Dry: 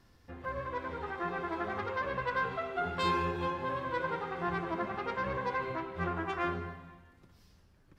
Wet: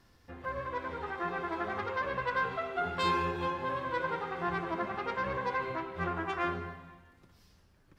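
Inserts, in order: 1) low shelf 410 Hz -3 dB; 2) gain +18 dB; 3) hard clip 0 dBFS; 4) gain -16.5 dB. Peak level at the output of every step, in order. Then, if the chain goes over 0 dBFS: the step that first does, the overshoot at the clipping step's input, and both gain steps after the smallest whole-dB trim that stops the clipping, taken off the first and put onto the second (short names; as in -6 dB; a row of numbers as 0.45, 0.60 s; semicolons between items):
-19.5, -1.5, -1.5, -18.0 dBFS; no overload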